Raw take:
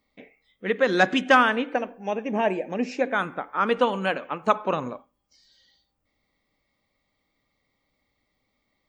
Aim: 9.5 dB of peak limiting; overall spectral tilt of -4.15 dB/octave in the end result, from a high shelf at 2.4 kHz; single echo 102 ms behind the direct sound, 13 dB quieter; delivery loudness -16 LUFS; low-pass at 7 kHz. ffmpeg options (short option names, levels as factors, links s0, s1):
-af "lowpass=7000,highshelf=f=2400:g=-9,alimiter=limit=0.15:level=0:latency=1,aecho=1:1:102:0.224,volume=4.22"